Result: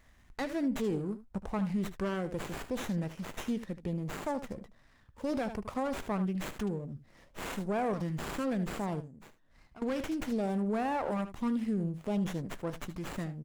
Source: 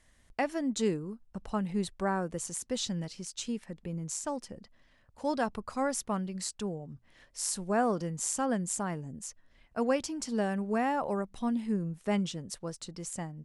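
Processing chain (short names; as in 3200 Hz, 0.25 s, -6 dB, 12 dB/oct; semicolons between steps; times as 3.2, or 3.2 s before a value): in parallel at -4.5 dB: wavefolder -24 dBFS; 9–9.82 on the sum: compressor 4:1, threshold -51 dBFS, peak gain reduction 22 dB; on a send: early reflections 15 ms -16.5 dB, 75 ms -14.5 dB; on the sum: LFO notch saw up 0.63 Hz 360–4700 Hz; limiter -24.5 dBFS, peak gain reduction 8.5 dB; running maximum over 9 samples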